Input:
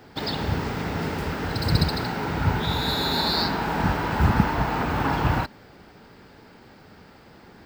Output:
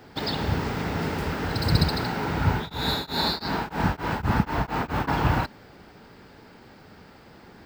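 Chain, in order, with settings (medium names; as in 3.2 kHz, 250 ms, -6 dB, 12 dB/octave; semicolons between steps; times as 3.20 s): 2.50–5.07 s: tremolo of two beating tones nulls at 2.4 Hz -> 5.4 Hz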